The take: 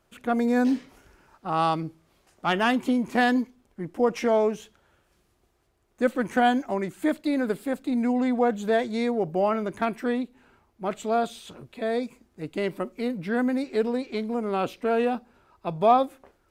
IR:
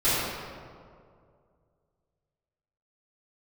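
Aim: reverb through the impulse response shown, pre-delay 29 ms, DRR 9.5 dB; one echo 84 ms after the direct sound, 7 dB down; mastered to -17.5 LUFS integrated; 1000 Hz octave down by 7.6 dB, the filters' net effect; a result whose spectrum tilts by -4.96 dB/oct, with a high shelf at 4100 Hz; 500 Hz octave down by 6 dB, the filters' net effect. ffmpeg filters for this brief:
-filter_complex "[0:a]equalizer=f=500:t=o:g=-4.5,equalizer=f=1k:t=o:g=-9,highshelf=f=4.1k:g=-8,aecho=1:1:84:0.447,asplit=2[a][b];[1:a]atrim=start_sample=2205,adelay=29[c];[b][c]afir=irnorm=-1:irlink=0,volume=-25.5dB[d];[a][d]amix=inputs=2:normalize=0,volume=11dB"

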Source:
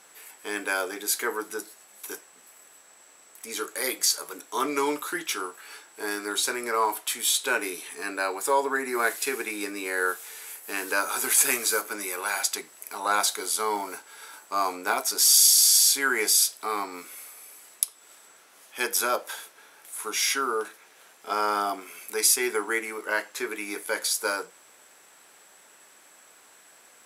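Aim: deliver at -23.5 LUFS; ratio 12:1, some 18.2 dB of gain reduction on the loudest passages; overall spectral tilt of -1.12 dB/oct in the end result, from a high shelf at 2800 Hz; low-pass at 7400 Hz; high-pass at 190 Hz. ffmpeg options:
-af "highpass=190,lowpass=7.4k,highshelf=f=2.8k:g=4,acompressor=threshold=-33dB:ratio=12,volume=13.5dB"

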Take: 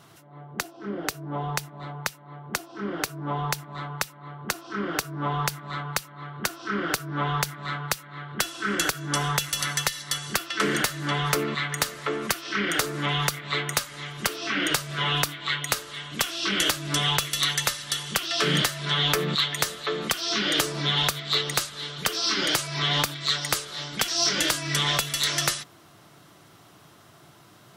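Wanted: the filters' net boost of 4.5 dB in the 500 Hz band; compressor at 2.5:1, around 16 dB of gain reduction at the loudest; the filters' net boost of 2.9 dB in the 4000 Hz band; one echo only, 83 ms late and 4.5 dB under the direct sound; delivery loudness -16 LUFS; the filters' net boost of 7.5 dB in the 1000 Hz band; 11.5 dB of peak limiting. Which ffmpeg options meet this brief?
-af "equalizer=f=500:t=o:g=3.5,equalizer=f=1k:t=o:g=8.5,equalizer=f=4k:t=o:g=3,acompressor=threshold=-42dB:ratio=2.5,alimiter=level_in=4.5dB:limit=-24dB:level=0:latency=1,volume=-4.5dB,aecho=1:1:83:0.596,volume=22dB"

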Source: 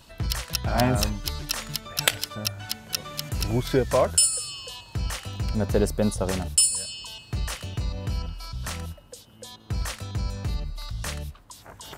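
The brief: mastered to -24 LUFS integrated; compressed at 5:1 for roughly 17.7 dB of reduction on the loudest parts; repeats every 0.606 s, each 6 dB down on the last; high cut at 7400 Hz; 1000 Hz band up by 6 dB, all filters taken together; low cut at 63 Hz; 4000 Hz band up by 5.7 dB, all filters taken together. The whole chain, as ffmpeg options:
-af "highpass=63,lowpass=7.4k,equalizer=f=1k:t=o:g=7.5,equalizer=f=4k:t=o:g=8,acompressor=threshold=-34dB:ratio=5,aecho=1:1:606|1212|1818|2424|3030|3636:0.501|0.251|0.125|0.0626|0.0313|0.0157,volume=11.5dB"

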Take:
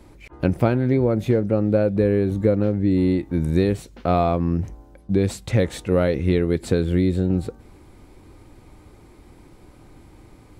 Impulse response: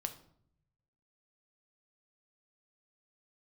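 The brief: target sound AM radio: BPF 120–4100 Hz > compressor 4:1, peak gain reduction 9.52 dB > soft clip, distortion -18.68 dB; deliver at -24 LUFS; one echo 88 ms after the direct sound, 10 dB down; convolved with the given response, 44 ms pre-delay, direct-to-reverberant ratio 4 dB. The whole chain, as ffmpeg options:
-filter_complex "[0:a]aecho=1:1:88:0.316,asplit=2[a][b];[1:a]atrim=start_sample=2205,adelay=44[c];[b][c]afir=irnorm=-1:irlink=0,volume=-3dB[d];[a][d]amix=inputs=2:normalize=0,highpass=120,lowpass=4.1k,acompressor=threshold=-22dB:ratio=4,asoftclip=threshold=-17dB,volume=3.5dB"

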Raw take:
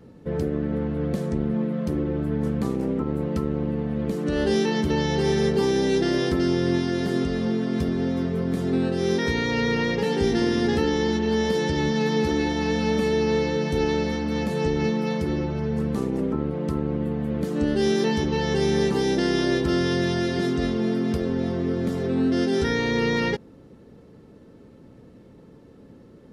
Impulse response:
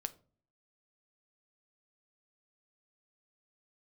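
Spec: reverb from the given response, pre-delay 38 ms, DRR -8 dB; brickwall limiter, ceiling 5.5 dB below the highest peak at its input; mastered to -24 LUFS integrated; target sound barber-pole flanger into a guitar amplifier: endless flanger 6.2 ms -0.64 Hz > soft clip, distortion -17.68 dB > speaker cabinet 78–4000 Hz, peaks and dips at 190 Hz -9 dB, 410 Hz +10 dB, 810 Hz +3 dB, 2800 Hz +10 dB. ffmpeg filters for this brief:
-filter_complex "[0:a]alimiter=limit=-16dB:level=0:latency=1,asplit=2[a][b];[1:a]atrim=start_sample=2205,adelay=38[c];[b][c]afir=irnorm=-1:irlink=0,volume=9.5dB[d];[a][d]amix=inputs=2:normalize=0,asplit=2[e][f];[f]adelay=6.2,afreqshift=-0.64[g];[e][g]amix=inputs=2:normalize=1,asoftclip=threshold=-13dB,highpass=78,equalizer=f=190:t=q:w=4:g=-9,equalizer=f=410:t=q:w=4:g=10,equalizer=f=810:t=q:w=4:g=3,equalizer=f=2.8k:t=q:w=4:g=10,lowpass=f=4k:w=0.5412,lowpass=f=4k:w=1.3066,volume=-6.5dB"

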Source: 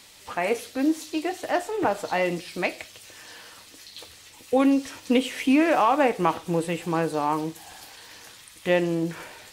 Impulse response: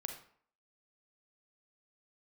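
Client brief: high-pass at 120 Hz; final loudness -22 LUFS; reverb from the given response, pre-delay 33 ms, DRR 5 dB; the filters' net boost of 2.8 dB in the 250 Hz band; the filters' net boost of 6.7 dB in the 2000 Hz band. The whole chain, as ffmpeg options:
-filter_complex "[0:a]highpass=120,equalizer=f=250:t=o:g=3.5,equalizer=f=2k:t=o:g=8,asplit=2[a][b];[1:a]atrim=start_sample=2205,adelay=33[c];[b][c]afir=irnorm=-1:irlink=0,volume=-4dB[d];[a][d]amix=inputs=2:normalize=0,volume=-1dB"

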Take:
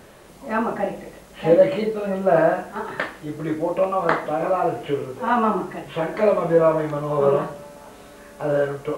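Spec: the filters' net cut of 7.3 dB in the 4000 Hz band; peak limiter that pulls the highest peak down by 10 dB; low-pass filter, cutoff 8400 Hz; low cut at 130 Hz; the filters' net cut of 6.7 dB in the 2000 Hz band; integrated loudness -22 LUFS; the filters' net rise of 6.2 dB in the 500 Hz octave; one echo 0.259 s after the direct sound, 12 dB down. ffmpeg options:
-af "highpass=130,lowpass=8.4k,equalizer=f=500:t=o:g=8,equalizer=f=2k:t=o:g=-9,equalizer=f=4k:t=o:g=-6,alimiter=limit=-7.5dB:level=0:latency=1,aecho=1:1:259:0.251,volume=-3dB"

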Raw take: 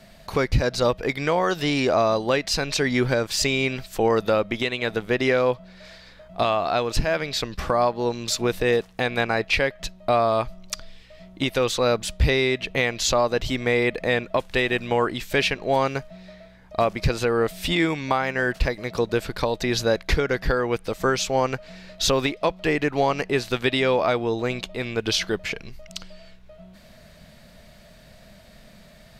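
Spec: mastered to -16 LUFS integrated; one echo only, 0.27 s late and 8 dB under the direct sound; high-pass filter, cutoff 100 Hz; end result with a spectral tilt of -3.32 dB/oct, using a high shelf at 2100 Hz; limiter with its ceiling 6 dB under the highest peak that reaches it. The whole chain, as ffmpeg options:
-af "highpass=100,highshelf=f=2.1k:g=5.5,alimiter=limit=-11dB:level=0:latency=1,aecho=1:1:270:0.398,volume=7dB"

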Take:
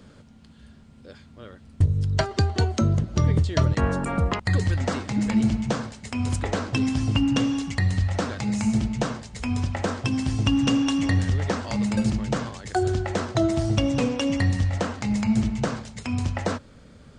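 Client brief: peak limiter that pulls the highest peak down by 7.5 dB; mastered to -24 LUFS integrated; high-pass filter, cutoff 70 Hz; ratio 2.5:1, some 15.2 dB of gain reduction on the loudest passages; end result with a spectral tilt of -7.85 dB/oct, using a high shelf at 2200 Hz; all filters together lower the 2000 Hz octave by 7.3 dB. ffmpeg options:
-af "highpass=70,equalizer=f=2k:t=o:g=-6.5,highshelf=f=2.2k:g=-5.5,acompressor=threshold=-41dB:ratio=2.5,volume=16dB,alimiter=limit=-14.5dB:level=0:latency=1"

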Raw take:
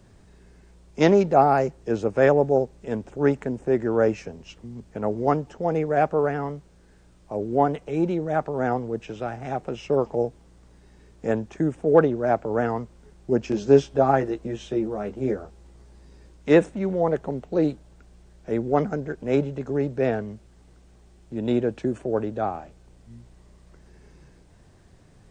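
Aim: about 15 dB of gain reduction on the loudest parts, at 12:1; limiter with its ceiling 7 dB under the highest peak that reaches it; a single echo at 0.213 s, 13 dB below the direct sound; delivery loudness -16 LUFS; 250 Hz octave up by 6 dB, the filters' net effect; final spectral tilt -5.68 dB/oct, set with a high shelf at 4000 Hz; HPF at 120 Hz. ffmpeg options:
-af "highpass=120,equalizer=f=250:t=o:g=8,highshelf=f=4k:g=3,acompressor=threshold=-22dB:ratio=12,alimiter=limit=-20dB:level=0:latency=1,aecho=1:1:213:0.224,volume=14.5dB"

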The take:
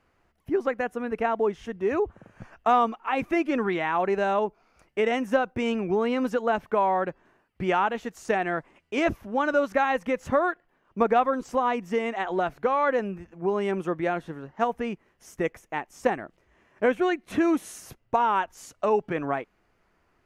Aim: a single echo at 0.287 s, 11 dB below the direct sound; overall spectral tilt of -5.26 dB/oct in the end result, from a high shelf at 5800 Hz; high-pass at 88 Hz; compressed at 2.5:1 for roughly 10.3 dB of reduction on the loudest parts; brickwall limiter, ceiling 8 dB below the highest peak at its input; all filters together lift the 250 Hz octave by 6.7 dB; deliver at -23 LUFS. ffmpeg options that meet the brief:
-af "highpass=88,equalizer=f=250:t=o:g=8.5,highshelf=f=5.8k:g=7,acompressor=threshold=-30dB:ratio=2.5,alimiter=limit=-23.5dB:level=0:latency=1,aecho=1:1:287:0.282,volume=10.5dB"

